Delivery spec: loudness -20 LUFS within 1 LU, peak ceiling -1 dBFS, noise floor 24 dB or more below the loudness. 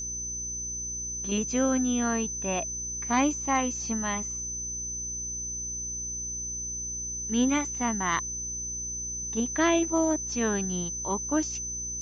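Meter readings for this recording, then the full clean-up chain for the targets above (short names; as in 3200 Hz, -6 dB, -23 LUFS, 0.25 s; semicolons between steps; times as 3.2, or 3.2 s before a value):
hum 60 Hz; harmonics up to 420 Hz; hum level -42 dBFS; steady tone 6100 Hz; tone level -32 dBFS; loudness -28.5 LUFS; peak -14.5 dBFS; loudness target -20.0 LUFS
-> de-hum 60 Hz, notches 7; notch 6100 Hz, Q 30; gain +8.5 dB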